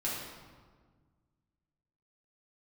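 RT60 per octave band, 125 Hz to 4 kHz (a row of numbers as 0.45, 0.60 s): 2.4, 2.1, 1.6, 1.5, 1.2, 1.0 s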